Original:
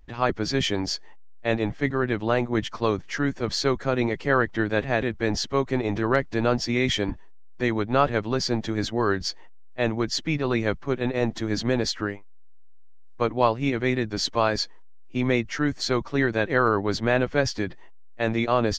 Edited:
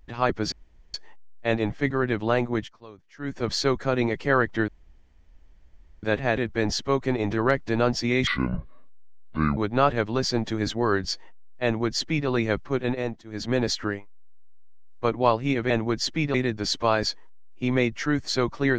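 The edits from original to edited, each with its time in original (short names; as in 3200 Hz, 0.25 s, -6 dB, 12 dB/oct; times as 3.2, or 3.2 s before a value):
0.52–0.94 room tone
2.51–3.39 dip -21.5 dB, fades 0.22 s
4.68 insert room tone 1.35 s
6.92–7.74 speed 63%
9.81–10.45 copy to 13.87
11.07–11.73 dip -23 dB, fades 0.33 s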